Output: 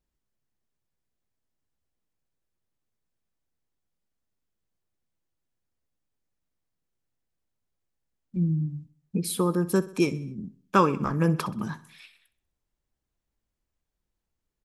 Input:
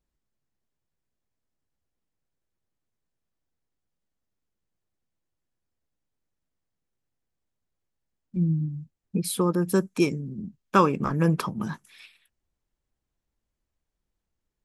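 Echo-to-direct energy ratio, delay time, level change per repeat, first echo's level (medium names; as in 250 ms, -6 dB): -16.0 dB, 64 ms, -5.5 dB, -17.5 dB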